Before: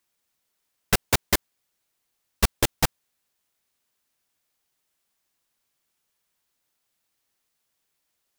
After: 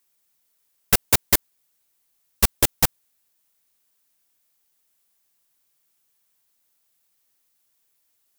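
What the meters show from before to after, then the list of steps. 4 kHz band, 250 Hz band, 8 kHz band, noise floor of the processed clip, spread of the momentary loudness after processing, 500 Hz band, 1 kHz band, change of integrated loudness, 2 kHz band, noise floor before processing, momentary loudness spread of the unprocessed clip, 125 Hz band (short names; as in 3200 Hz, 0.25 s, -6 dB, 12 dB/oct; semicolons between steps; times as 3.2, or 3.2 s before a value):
+2.0 dB, 0.0 dB, +5.5 dB, -70 dBFS, 5 LU, 0.0 dB, 0.0 dB, +5.0 dB, +0.5 dB, -77 dBFS, 4 LU, 0.0 dB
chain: high shelf 7900 Hz +10.5 dB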